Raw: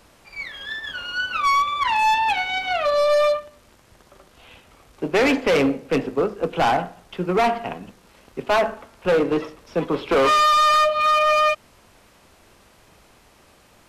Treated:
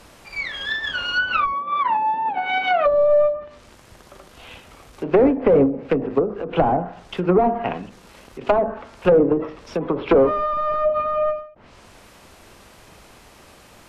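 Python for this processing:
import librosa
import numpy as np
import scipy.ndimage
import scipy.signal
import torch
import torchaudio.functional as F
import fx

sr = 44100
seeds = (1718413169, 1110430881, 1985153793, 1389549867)

y = fx.highpass(x, sr, hz=160.0, slope=24, at=(1.52, 2.86))
y = fx.env_lowpass_down(y, sr, base_hz=570.0, full_db=-16.5)
y = fx.end_taper(y, sr, db_per_s=120.0)
y = F.gain(torch.from_numpy(y), 6.0).numpy()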